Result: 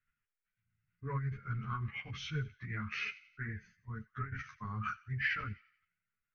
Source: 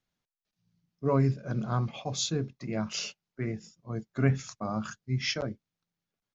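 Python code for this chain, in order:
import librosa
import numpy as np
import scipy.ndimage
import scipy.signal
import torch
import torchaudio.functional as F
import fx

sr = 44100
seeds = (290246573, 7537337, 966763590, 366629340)

p1 = fx.level_steps(x, sr, step_db=21)
p2 = x + (p1 * librosa.db_to_amplitude(2.5))
p3 = fx.curve_eq(p2, sr, hz=(110.0, 660.0, 1600.0, 2500.0, 5500.0, 8200.0), db=(0, -30, 5, 3, -25, -18))
p4 = p3 + fx.echo_wet_highpass(p3, sr, ms=90, feedback_pct=44, hz=2000.0, wet_db=-16.5, dry=0)
p5 = fx.over_compress(p4, sr, threshold_db=-29.0, ratio=-0.5)
p6 = fx.notch(p5, sr, hz=4000.0, q=25.0)
p7 = fx.formant_shift(p6, sr, semitones=-2)
p8 = fx.peak_eq(p7, sr, hz=430.0, db=11.0, octaves=0.27)
y = fx.ensemble(p8, sr)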